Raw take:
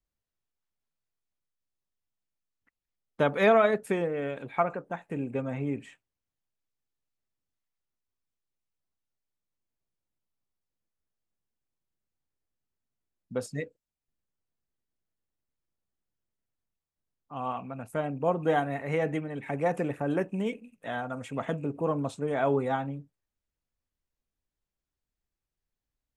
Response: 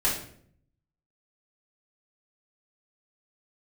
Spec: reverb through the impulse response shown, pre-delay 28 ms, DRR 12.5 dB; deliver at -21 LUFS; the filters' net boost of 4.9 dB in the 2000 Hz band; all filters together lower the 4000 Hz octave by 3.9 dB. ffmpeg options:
-filter_complex "[0:a]equalizer=f=2k:t=o:g=8,equalizer=f=4k:t=o:g=-8.5,asplit=2[a][b];[1:a]atrim=start_sample=2205,adelay=28[c];[b][c]afir=irnorm=-1:irlink=0,volume=-23.5dB[d];[a][d]amix=inputs=2:normalize=0,volume=7.5dB"

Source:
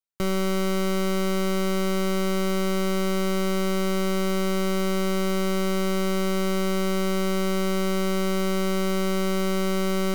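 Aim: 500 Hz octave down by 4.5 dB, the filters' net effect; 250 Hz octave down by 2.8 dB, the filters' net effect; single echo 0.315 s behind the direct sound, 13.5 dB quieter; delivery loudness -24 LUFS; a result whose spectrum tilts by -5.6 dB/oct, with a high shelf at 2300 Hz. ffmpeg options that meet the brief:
-af "equalizer=f=250:t=o:g=-3.5,equalizer=f=500:t=o:g=-4.5,highshelf=f=2.3k:g=-7.5,aecho=1:1:315:0.211,volume=4.5dB"

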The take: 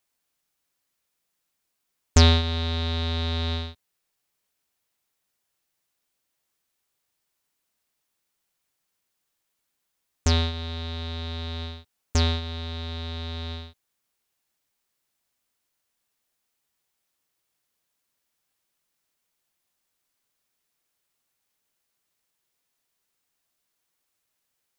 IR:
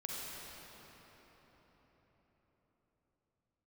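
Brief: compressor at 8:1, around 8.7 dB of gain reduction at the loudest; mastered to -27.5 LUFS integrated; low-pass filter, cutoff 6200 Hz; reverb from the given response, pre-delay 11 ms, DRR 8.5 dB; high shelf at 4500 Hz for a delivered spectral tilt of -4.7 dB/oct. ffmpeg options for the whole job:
-filter_complex "[0:a]lowpass=6.2k,highshelf=f=4.5k:g=-9,acompressor=threshold=-22dB:ratio=8,asplit=2[a][b];[1:a]atrim=start_sample=2205,adelay=11[c];[b][c]afir=irnorm=-1:irlink=0,volume=-10dB[d];[a][d]amix=inputs=2:normalize=0,volume=3.5dB"

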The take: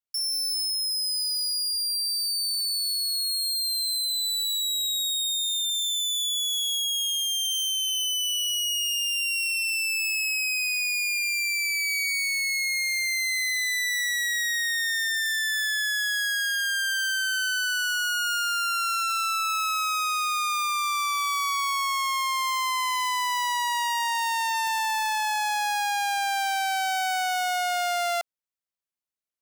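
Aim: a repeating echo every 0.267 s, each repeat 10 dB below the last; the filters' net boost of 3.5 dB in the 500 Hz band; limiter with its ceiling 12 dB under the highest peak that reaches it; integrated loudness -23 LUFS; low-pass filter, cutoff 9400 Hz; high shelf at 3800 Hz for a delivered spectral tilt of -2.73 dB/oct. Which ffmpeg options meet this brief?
-af "lowpass=9.4k,equalizer=f=500:t=o:g=6.5,highshelf=f=3.8k:g=8.5,alimiter=level_in=3.5dB:limit=-24dB:level=0:latency=1,volume=-3.5dB,aecho=1:1:267|534|801|1068:0.316|0.101|0.0324|0.0104,volume=8.5dB"

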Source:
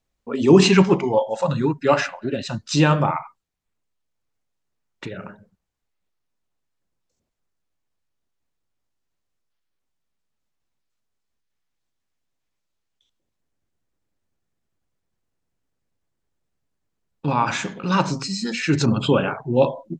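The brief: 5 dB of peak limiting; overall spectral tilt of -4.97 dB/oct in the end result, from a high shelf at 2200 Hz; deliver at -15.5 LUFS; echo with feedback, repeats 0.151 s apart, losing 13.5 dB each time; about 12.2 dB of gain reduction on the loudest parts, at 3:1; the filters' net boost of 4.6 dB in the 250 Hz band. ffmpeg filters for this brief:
-af "equalizer=f=250:t=o:g=6.5,highshelf=f=2.2k:g=5,acompressor=threshold=-20dB:ratio=3,alimiter=limit=-14dB:level=0:latency=1,aecho=1:1:151|302:0.211|0.0444,volume=9.5dB"

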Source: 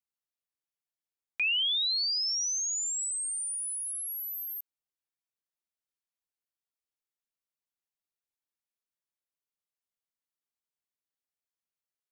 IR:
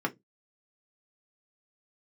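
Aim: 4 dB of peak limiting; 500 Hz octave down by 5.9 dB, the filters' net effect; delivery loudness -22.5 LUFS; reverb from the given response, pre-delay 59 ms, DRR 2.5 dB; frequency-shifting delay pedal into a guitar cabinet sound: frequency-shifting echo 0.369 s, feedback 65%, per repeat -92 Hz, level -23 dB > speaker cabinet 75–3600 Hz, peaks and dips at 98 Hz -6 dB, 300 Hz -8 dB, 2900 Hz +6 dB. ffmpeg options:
-filter_complex "[0:a]equalizer=f=500:t=o:g=-7,alimiter=level_in=4dB:limit=-24dB:level=0:latency=1,volume=-4dB,asplit=2[a][b];[1:a]atrim=start_sample=2205,adelay=59[c];[b][c]afir=irnorm=-1:irlink=0,volume=-10dB[d];[a][d]amix=inputs=2:normalize=0,asplit=6[e][f][g][h][i][j];[f]adelay=369,afreqshift=-92,volume=-23dB[k];[g]adelay=738,afreqshift=-184,volume=-26.7dB[l];[h]adelay=1107,afreqshift=-276,volume=-30.5dB[m];[i]adelay=1476,afreqshift=-368,volume=-34.2dB[n];[j]adelay=1845,afreqshift=-460,volume=-38dB[o];[e][k][l][m][n][o]amix=inputs=6:normalize=0,highpass=75,equalizer=f=98:t=q:w=4:g=-6,equalizer=f=300:t=q:w=4:g=-8,equalizer=f=2.9k:t=q:w=4:g=6,lowpass=f=3.6k:w=0.5412,lowpass=f=3.6k:w=1.3066,volume=6dB"

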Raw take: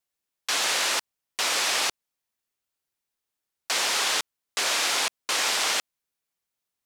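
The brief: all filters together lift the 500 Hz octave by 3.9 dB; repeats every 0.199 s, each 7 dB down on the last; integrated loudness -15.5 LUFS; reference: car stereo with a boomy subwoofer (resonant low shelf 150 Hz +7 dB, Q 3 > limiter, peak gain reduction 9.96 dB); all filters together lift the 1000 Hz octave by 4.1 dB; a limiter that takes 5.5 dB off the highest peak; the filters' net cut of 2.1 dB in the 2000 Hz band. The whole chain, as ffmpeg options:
-af "equalizer=f=500:t=o:g=4,equalizer=f=1k:t=o:g=5.5,equalizer=f=2k:t=o:g=-4.5,alimiter=limit=-16.5dB:level=0:latency=1,lowshelf=f=150:t=q:w=3:g=7,aecho=1:1:199|398|597|796|995:0.447|0.201|0.0905|0.0407|0.0183,volume=17dB,alimiter=limit=-7dB:level=0:latency=1"

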